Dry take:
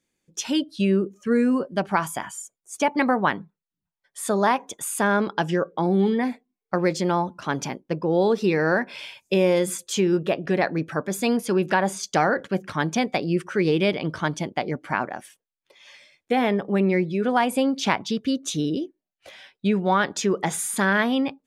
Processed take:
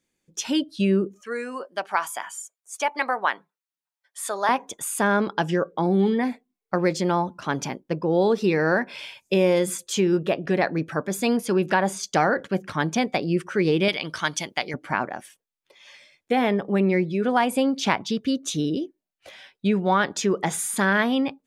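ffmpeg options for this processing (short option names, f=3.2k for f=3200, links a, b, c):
-filter_complex "[0:a]asettb=1/sr,asplit=3[a][b][c];[a]atrim=end=1.214[d];[b]atrim=start=1.21:end=4.49,asetpts=PTS-STARTPTS,afade=t=in:d=0.004:c=qsin,afade=t=out:st=3.276:d=0.004:c=qsin,highpass=680[e];[c]atrim=start=4.486[f];[d][e]acrossfade=d=0.004:c1=hsin:c2=qsin[g];[g][f]acrossfade=d=0.004:c1=qsin:c2=hsin,asettb=1/sr,asplit=3[h][i][j];[h]atrim=end=13.884[k];[i]atrim=start=13.88:end=14.74,asetpts=PTS-STARTPTS,afade=t=in:d=0.004:c=qsin,afade=t=out:st=0.856:d=0.004:c=qsin,tiltshelf=f=1.1k:g=-9[l];[j]atrim=start=14.736[m];[k][l]acrossfade=d=0.004:c1=hsin:c2=qsin[n];[n][m]acrossfade=d=0.004:c1=qsin:c2=hsin"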